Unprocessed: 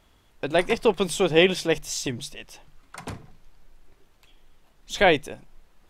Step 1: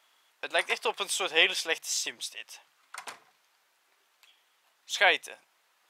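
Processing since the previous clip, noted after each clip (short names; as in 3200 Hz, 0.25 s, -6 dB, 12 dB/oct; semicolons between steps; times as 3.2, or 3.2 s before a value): HPF 950 Hz 12 dB/oct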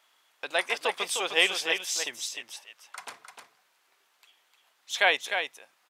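echo 0.304 s -7 dB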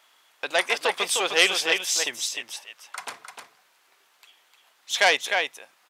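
core saturation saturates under 3100 Hz; gain +6 dB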